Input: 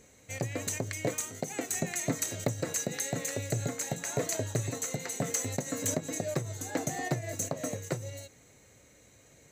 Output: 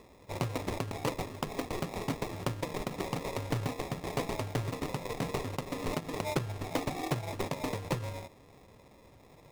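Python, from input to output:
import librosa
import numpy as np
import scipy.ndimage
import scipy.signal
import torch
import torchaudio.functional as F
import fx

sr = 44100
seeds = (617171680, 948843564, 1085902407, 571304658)

y = fx.rider(x, sr, range_db=3, speed_s=0.5)
y = fx.sample_hold(y, sr, seeds[0], rate_hz=1500.0, jitter_pct=0)
y = fx.doppler_dist(y, sr, depth_ms=0.48)
y = y * librosa.db_to_amplitude(-1.0)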